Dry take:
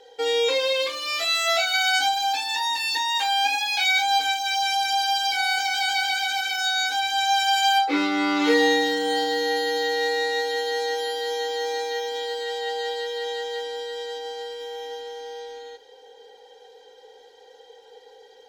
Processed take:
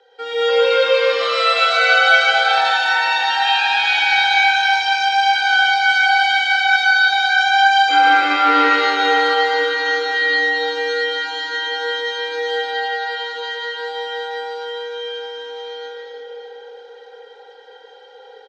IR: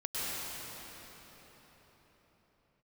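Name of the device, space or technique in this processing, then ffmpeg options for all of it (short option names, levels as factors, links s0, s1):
station announcement: -filter_complex "[0:a]highpass=410,lowpass=3800,equalizer=f=1400:t=o:w=0.31:g=11.5,aecho=1:1:119.5|239.1:0.355|0.282[s0];[1:a]atrim=start_sample=2205[s1];[s0][s1]afir=irnorm=-1:irlink=0,asettb=1/sr,asplit=3[s2][s3][s4];[s2]atrim=end=12.684[s5];[s3]atrim=start=12.68:end=13.8,asetpts=PTS-STARTPTS,afade=t=in:d=0.004:c=qsin,afade=t=out:st=1.116:d=0.004:c=qsin,lowpass=f=8000:w=0.5412,lowpass=f=8000:w=1.3066[s6];[s4]atrim=start=13.796[s7];[s5][s6]acrossfade=d=0.004:c1=hsin:c2=qsin[s8];[s8][s7]acrossfade=d=0.004:c1=qsin:c2=hsin"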